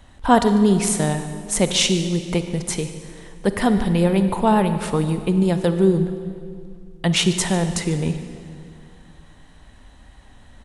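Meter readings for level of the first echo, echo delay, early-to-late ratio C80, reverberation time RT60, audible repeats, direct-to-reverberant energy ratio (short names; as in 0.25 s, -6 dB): -17.5 dB, 0.146 s, 10.0 dB, 2.2 s, 1, 8.5 dB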